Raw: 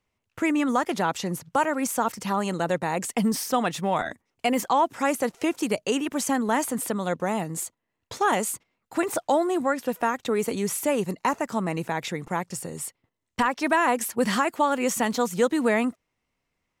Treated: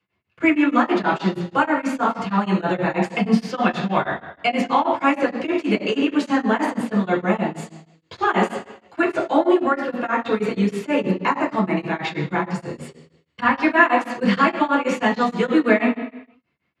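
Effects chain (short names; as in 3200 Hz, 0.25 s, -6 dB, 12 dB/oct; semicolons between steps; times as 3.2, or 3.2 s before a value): LPF 7300 Hz 12 dB/oct; reverb RT60 0.85 s, pre-delay 3 ms, DRR -6.5 dB; beating tremolo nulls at 6.3 Hz; gain -8 dB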